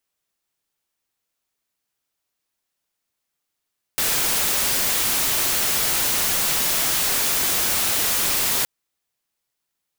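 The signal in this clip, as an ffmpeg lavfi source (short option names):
-f lavfi -i "anoisesrc=c=white:a=0.154:d=4.67:r=44100:seed=1"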